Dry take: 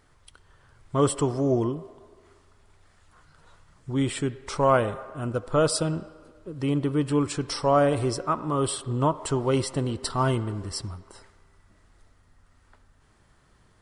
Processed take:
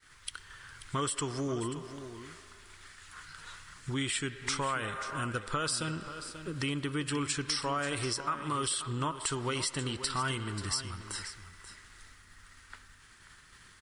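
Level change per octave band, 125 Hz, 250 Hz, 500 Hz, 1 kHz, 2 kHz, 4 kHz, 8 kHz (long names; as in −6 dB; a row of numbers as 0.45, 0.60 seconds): −9.5, −10.0, −13.5, −7.0, +1.0, +1.0, 0.0 decibels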